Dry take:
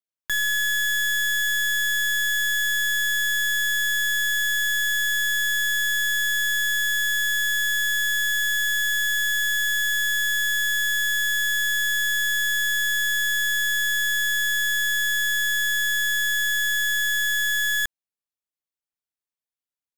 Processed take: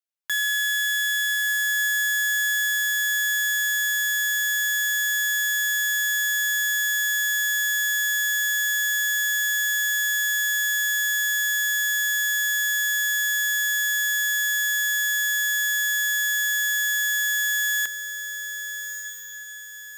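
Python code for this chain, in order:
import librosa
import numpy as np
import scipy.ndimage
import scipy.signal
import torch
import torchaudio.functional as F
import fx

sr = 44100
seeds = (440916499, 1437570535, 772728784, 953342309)

y = fx.highpass(x, sr, hz=740.0, slope=6)
y = fx.echo_diffused(y, sr, ms=1287, feedback_pct=42, wet_db=-9.0)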